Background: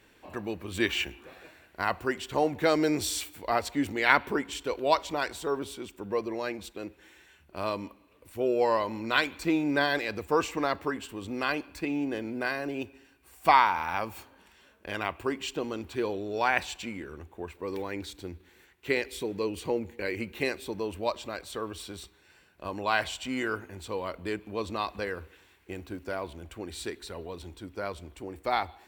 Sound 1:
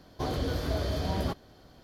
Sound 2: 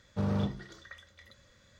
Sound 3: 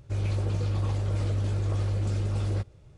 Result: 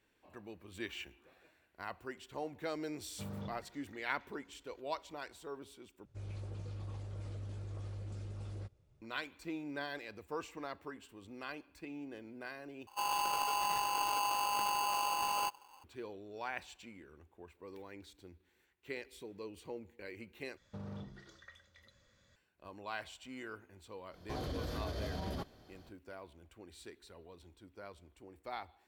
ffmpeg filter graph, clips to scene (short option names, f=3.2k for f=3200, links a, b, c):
-filter_complex "[2:a]asplit=2[a][b];[3:a]asplit=2[c][d];[0:a]volume=-15.5dB[e];[d]aeval=exprs='val(0)*sgn(sin(2*PI*920*n/s))':c=same[f];[b]alimiter=level_in=6dB:limit=-24dB:level=0:latency=1:release=172,volume=-6dB[g];[1:a]alimiter=level_in=2dB:limit=-24dB:level=0:latency=1:release=48,volume=-2dB[h];[e]asplit=4[i][j][k][l];[i]atrim=end=6.054[m];[c]atrim=end=2.97,asetpts=PTS-STARTPTS,volume=-16.5dB[n];[j]atrim=start=9.016:end=12.874[o];[f]atrim=end=2.97,asetpts=PTS-STARTPTS,volume=-7.5dB[p];[k]atrim=start=15.836:end=20.574[q];[g]atrim=end=1.79,asetpts=PTS-STARTPTS,volume=-7.5dB[r];[l]atrim=start=22.356[s];[a]atrim=end=1.79,asetpts=PTS-STARTPTS,volume=-14dB,afade=t=in:d=0.004:c=hsin,afade=t=out:st=1.786:d=0.004:c=hsin,adelay=3020[t];[h]atrim=end=1.83,asetpts=PTS-STARTPTS,volume=-5.5dB,afade=t=in:d=0.05,afade=t=out:st=1.78:d=0.05,adelay=24100[u];[m][n]acrossfade=d=0.004:c1=hsin:c2=hsin[v];[v][o]acrossfade=d=0.004:c1=hsin:c2=hsin[w];[w][p]acrossfade=d=0.004:c1=hsin:c2=hsin[x];[x][q]acrossfade=d=0.004:c1=hsin:c2=hsin[y];[y][r]acrossfade=d=0.004:c1=hsin:c2=hsin[z];[z][s]acrossfade=d=0.004:c1=hsin:c2=hsin[aa];[aa][t][u]amix=inputs=3:normalize=0"